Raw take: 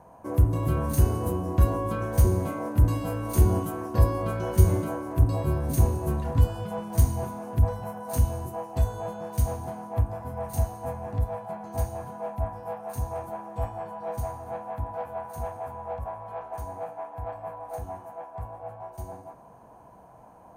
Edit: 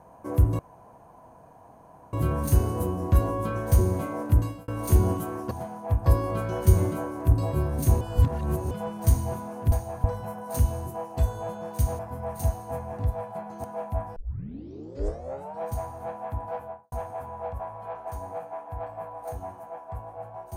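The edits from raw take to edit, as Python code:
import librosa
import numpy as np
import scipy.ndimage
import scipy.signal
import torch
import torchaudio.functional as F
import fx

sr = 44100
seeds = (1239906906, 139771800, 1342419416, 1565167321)

y = fx.studio_fade_out(x, sr, start_s=15.02, length_s=0.36)
y = fx.edit(y, sr, fx.insert_room_tone(at_s=0.59, length_s=1.54),
    fx.fade_out_span(start_s=2.79, length_s=0.35),
    fx.reverse_span(start_s=5.92, length_s=0.7),
    fx.move(start_s=9.58, length_s=0.55, to_s=3.97),
    fx.move(start_s=11.78, length_s=0.32, to_s=7.63),
    fx.tape_start(start_s=12.62, length_s=1.44), tone=tone)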